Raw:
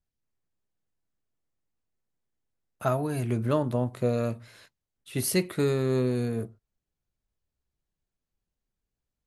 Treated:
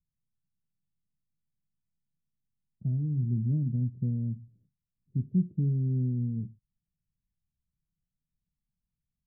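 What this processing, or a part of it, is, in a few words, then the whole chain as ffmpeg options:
the neighbour's flat through the wall: -af "lowpass=f=230:w=0.5412,lowpass=f=230:w=1.3066,equalizer=f=160:t=o:w=0.75:g=8,volume=0.794"

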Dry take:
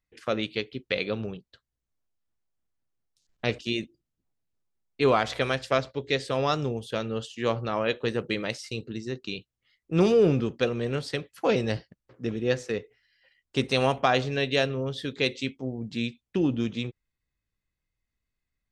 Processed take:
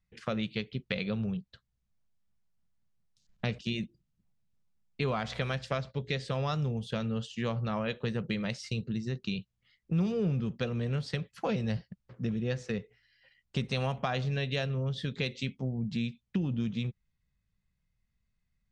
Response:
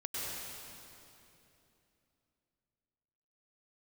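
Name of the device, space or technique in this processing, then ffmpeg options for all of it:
jukebox: -af "lowpass=7200,lowshelf=f=240:t=q:w=3:g=6,acompressor=threshold=0.0282:ratio=3"

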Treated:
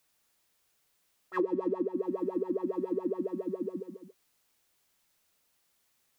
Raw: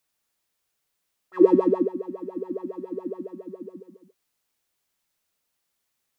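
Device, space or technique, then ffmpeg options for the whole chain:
serial compression, peaks first: -af "acompressor=threshold=0.0501:ratio=6,acompressor=threshold=0.0224:ratio=2.5,volume=1.68"

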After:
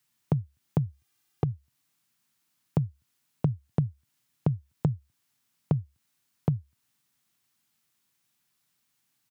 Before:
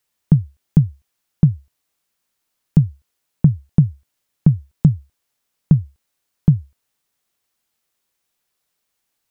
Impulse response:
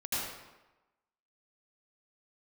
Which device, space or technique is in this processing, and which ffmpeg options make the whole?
serial compression, peaks first: -filter_complex "[0:a]equalizer=f=125:t=o:w=1:g=7,equalizer=f=250:t=o:w=1:g=4,equalizer=f=500:t=o:w=1:g=-10,acompressor=threshold=0.112:ratio=4,acompressor=threshold=0.0794:ratio=2.5,highpass=f=97:w=0.5412,highpass=f=97:w=1.3066,asplit=3[s0][s1][s2];[s0]afade=t=out:st=0.86:d=0.02[s3];[s1]aecho=1:1:2.5:0.65,afade=t=in:st=0.86:d=0.02,afade=t=out:st=1.5:d=0.02[s4];[s2]afade=t=in:st=1.5:d=0.02[s5];[s3][s4][s5]amix=inputs=3:normalize=0"

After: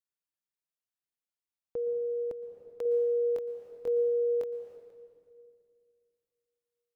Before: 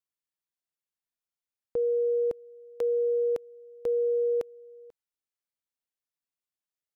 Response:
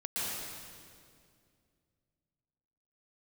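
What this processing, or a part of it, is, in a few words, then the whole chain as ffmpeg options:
compressed reverb return: -filter_complex "[0:a]asplit=2[s0][s1];[1:a]atrim=start_sample=2205[s2];[s1][s2]afir=irnorm=-1:irlink=0,acompressor=threshold=0.0794:ratio=6,volume=0.355[s3];[s0][s3]amix=inputs=2:normalize=0,asettb=1/sr,asplit=3[s4][s5][s6];[s4]atrim=end=2.834[s7];[s5]atrim=start=2.83:end=4.77,asetpts=PTS-STARTPTS,afade=t=in:d=0.004:c=qsin,afade=t=out:st=1.936:d=0.004:c=qsin,asplit=2[s8][s9];[s9]adelay=23,volume=0.708[s10];[s8][s10]amix=inputs=2:normalize=0,atrim=end_sample=85554[s11];[s6]atrim=start=4.766[s12];[s7][s11]acrossfade=d=0.004:c1=hsin:c2=qsin[s13];[s13][s12]acrossfade=d=0.004:c1=qsin:c2=hsin,volume=0.422"

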